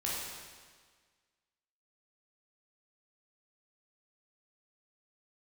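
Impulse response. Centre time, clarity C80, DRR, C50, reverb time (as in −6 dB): 105 ms, 1.0 dB, −6.0 dB, −1.5 dB, 1.6 s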